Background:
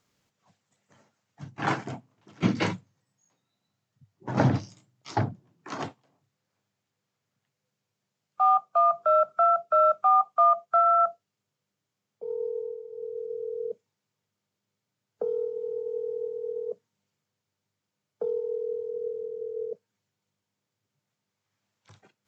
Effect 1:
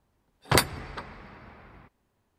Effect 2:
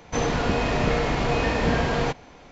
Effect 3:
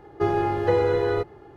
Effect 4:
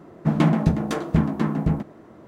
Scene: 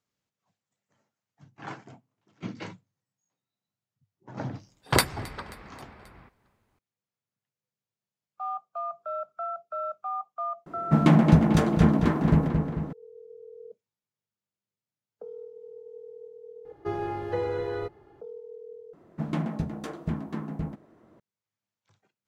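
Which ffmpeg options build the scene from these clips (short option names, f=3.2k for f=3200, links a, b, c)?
-filter_complex "[4:a]asplit=2[a][b];[0:a]volume=-12.5dB[c];[1:a]aecho=1:1:267|534|801|1068:0.0708|0.0425|0.0255|0.0153[d];[a]asplit=2[e][f];[f]adelay=222,lowpass=f=4.7k:p=1,volume=-5dB,asplit=2[g][h];[h]adelay=222,lowpass=f=4.7k:p=1,volume=0.53,asplit=2[i][j];[j]adelay=222,lowpass=f=4.7k:p=1,volume=0.53,asplit=2[k][l];[l]adelay=222,lowpass=f=4.7k:p=1,volume=0.53,asplit=2[m][n];[n]adelay=222,lowpass=f=4.7k:p=1,volume=0.53,asplit=2[o][p];[p]adelay=222,lowpass=f=4.7k:p=1,volume=0.53,asplit=2[q][r];[r]adelay=222,lowpass=f=4.7k:p=1,volume=0.53[s];[e][g][i][k][m][o][q][s]amix=inputs=8:normalize=0[t];[c]asplit=2[u][v];[u]atrim=end=18.934[w];[b]atrim=end=2.27,asetpts=PTS-STARTPTS,volume=-11dB[x];[v]atrim=start=21.196[y];[d]atrim=end=2.38,asetpts=PTS-STARTPTS,volume=-0.5dB,afade=t=in:d=0.004:c=hsin,afade=t=out:st=2.376:d=0.004:c=hsin,adelay=194481S[z];[t]atrim=end=2.27,asetpts=PTS-STARTPTS,afade=t=in:d=0.004:c=hsin,afade=t=out:st=2.266:d=0.004:c=hsin,adelay=470106S[aa];[3:a]atrim=end=1.56,asetpts=PTS-STARTPTS,volume=-8.5dB,afade=t=in:d=0.004:c=hsin,afade=t=out:st=1.556:d=0.004:c=hsin,adelay=16650[ab];[w][x]acrossfade=d=0.004:c1=hsin:c2=hsin[ac];[ac][y]acrossfade=d=0.004:c1=hsin:c2=hsin[ad];[ad][z][aa][ab]amix=inputs=4:normalize=0"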